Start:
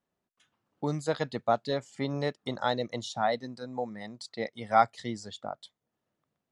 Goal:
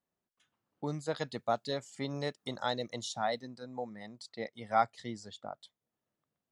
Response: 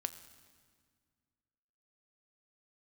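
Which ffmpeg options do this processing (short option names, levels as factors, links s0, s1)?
-filter_complex "[0:a]asettb=1/sr,asplit=3[s0][s1][s2];[s0]atrim=end=1.164[s3];[s1]atrim=start=1.16:end=3.42,asetpts=PTS-STARTPTS,afade=t=in:d=0.004:c=qsin,afade=t=out:st=2.256:d=0.004:c=qsin,highshelf=f=5200:g=11.5[s4];[s2]atrim=start=3.416[s5];[s3][s4]acrossfade=d=0.004:c1=hsin:c2=qsin[s6];[s6][s5]acrossfade=d=0.004:c1=qsin:c2=hsin,volume=0.531"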